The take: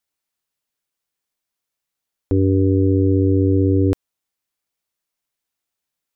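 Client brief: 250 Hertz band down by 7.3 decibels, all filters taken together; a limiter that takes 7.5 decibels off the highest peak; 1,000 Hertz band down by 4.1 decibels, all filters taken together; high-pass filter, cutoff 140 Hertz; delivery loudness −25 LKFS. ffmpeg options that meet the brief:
ffmpeg -i in.wav -af "highpass=140,equalizer=frequency=250:width_type=o:gain=-8.5,equalizer=frequency=1000:width_type=o:gain=-5,volume=6dB,alimiter=limit=-14.5dB:level=0:latency=1" out.wav

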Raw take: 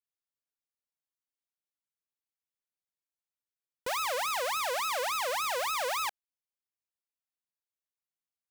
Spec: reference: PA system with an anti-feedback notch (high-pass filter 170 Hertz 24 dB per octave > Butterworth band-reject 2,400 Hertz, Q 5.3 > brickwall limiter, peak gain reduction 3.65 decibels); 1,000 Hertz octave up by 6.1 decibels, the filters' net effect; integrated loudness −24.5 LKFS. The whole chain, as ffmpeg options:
ffmpeg -i in.wav -af "highpass=frequency=170:width=0.5412,highpass=frequency=170:width=1.3066,asuperstop=centerf=2400:order=8:qfactor=5.3,equalizer=frequency=1000:width_type=o:gain=7.5,volume=5dB,alimiter=limit=-19dB:level=0:latency=1" out.wav

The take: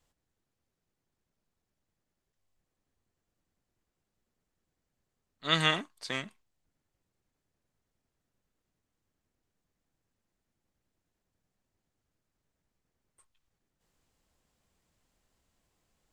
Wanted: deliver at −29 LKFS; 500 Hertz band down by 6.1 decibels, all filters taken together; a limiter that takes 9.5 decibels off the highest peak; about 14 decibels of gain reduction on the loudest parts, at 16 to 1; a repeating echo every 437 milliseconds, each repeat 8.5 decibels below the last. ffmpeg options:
ffmpeg -i in.wav -af "equalizer=frequency=500:width_type=o:gain=-8,acompressor=threshold=-35dB:ratio=16,alimiter=level_in=7dB:limit=-24dB:level=0:latency=1,volume=-7dB,aecho=1:1:437|874|1311|1748:0.376|0.143|0.0543|0.0206,volume=18dB" out.wav

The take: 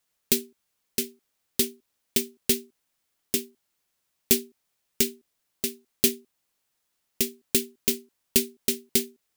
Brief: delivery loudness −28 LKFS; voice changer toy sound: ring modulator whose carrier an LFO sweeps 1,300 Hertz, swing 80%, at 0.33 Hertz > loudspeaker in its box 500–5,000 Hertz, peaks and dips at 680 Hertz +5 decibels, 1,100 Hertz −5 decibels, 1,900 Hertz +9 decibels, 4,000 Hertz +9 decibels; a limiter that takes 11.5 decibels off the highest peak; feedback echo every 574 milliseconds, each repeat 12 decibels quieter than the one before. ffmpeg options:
ffmpeg -i in.wav -af "alimiter=limit=-14.5dB:level=0:latency=1,aecho=1:1:574|1148|1722:0.251|0.0628|0.0157,aeval=exprs='val(0)*sin(2*PI*1300*n/s+1300*0.8/0.33*sin(2*PI*0.33*n/s))':channel_layout=same,highpass=500,equalizer=frequency=680:width_type=q:width=4:gain=5,equalizer=frequency=1100:width_type=q:width=4:gain=-5,equalizer=frequency=1900:width_type=q:width=4:gain=9,equalizer=frequency=4000:width_type=q:width=4:gain=9,lowpass=frequency=5000:width=0.5412,lowpass=frequency=5000:width=1.3066,volume=8dB" out.wav

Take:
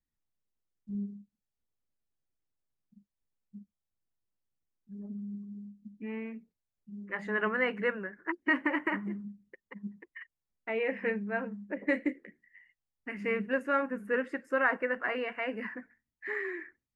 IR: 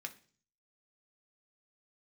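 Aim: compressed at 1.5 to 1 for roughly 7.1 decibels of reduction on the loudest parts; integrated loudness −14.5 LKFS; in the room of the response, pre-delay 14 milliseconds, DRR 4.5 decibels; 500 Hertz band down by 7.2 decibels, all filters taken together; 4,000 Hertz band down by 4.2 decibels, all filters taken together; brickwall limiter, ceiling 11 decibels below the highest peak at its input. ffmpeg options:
-filter_complex "[0:a]equalizer=frequency=500:width_type=o:gain=-8,equalizer=frequency=4000:width_type=o:gain=-7.5,acompressor=threshold=-45dB:ratio=1.5,alimiter=level_in=10dB:limit=-24dB:level=0:latency=1,volume=-10dB,asplit=2[link_01][link_02];[1:a]atrim=start_sample=2205,adelay=14[link_03];[link_02][link_03]afir=irnorm=-1:irlink=0,volume=-3dB[link_04];[link_01][link_04]amix=inputs=2:normalize=0,volume=29.5dB"

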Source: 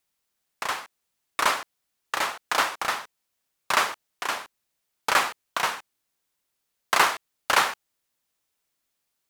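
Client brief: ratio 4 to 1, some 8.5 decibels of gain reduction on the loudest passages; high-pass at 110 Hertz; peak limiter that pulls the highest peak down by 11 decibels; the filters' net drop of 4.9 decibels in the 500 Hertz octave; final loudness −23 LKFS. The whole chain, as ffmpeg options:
ffmpeg -i in.wav -af "highpass=110,equalizer=frequency=500:width_type=o:gain=-6.5,acompressor=threshold=-27dB:ratio=4,volume=13.5dB,alimiter=limit=-8dB:level=0:latency=1" out.wav

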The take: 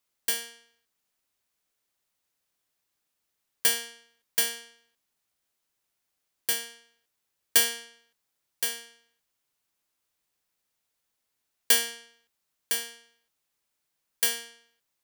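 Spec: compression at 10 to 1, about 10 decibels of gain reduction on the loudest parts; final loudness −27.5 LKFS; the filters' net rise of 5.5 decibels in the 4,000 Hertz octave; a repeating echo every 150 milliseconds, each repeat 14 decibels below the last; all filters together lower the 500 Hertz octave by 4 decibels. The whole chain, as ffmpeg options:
ffmpeg -i in.wav -af "equalizer=frequency=500:width_type=o:gain=-4.5,equalizer=frequency=4000:width_type=o:gain=7.5,acompressor=threshold=-24dB:ratio=10,aecho=1:1:150|300:0.2|0.0399,volume=3.5dB" out.wav

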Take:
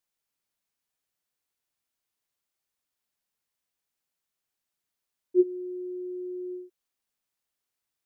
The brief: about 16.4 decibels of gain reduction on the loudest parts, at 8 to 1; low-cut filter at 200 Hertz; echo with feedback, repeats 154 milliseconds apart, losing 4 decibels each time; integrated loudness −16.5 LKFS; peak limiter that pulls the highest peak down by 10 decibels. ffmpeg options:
ffmpeg -i in.wav -af "highpass=200,acompressor=threshold=-34dB:ratio=8,alimiter=level_in=14dB:limit=-24dB:level=0:latency=1,volume=-14dB,aecho=1:1:154|308|462|616|770|924|1078|1232|1386:0.631|0.398|0.25|0.158|0.0994|0.0626|0.0394|0.0249|0.0157,volume=29dB" out.wav

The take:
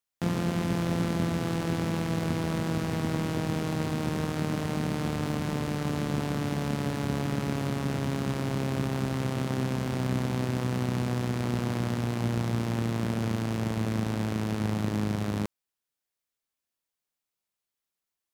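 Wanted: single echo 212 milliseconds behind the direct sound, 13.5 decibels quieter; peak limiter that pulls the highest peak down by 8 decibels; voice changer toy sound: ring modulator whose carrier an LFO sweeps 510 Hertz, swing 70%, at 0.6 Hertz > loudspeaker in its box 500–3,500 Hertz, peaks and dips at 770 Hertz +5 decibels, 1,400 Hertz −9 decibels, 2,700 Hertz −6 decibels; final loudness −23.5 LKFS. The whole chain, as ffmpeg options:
ffmpeg -i in.wav -af "alimiter=limit=-22.5dB:level=0:latency=1,aecho=1:1:212:0.211,aeval=exprs='val(0)*sin(2*PI*510*n/s+510*0.7/0.6*sin(2*PI*0.6*n/s))':channel_layout=same,highpass=500,equalizer=frequency=770:width_type=q:width=4:gain=5,equalizer=frequency=1400:width_type=q:width=4:gain=-9,equalizer=frequency=2700:width_type=q:width=4:gain=-6,lowpass=frequency=3500:width=0.5412,lowpass=frequency=3500:width=1.3066,volume=14dB" out.wav

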